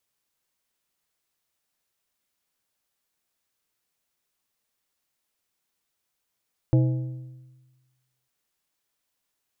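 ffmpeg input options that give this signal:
ffmpeg -f lavfi -i "aevalsrc='0.188*pow(10,-3*t/1.32)*sin(2*PI*128*t)+0.0841*pow(10,-3*t/1.003)*sin(2*PI*320*t)+0.0376*pow(10,-3*t/0.871)*sin(2*PI*512*t)+0.0168*pow(10,-3*t/0.814)*sin(2*PI*640*t)+0.0075*pow(10,-3*t/0.753)*sin(2*PI*832*t)':duration=1.55:sample_rate=44100" out.wav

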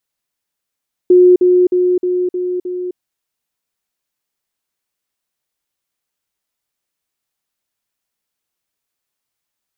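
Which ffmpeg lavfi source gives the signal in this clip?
ffmpeg -f lavfi -i "aevalsrc='pow(10,(-4-3*floor(t/0.31))/20)*sin(2*PI*361*t)*clip(min(mod(t,0.31),0.26-mod(t,0.31))/0.005,0,1)':duration=1.86:sample_rate=44100" out.wav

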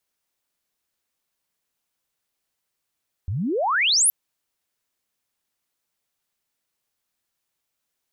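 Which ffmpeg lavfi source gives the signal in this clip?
ffmpeg -f lavfi -i "aevalsrc='pow(10,(-23.5+9.5*t/0.82)/20)*sin(2*PI*82*0.82/log(12000/82)*(exp(log(12000/82)*t/0.82)-1))':duration=0.82:sample_rate=44100" out.wav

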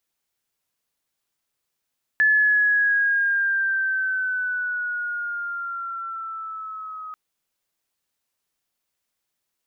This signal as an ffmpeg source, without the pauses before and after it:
ffmpeg -f lavfi -i "aevalsrc='pow(10,(-14-18.5*t/4.94)/20)*sin(2*PI*1730*4.94/(-5.5*log(2)/12)*(exp(-5.5*log(2)/12*t/4.94)-1))':duration=4.94:sample_rate=44100" out.wav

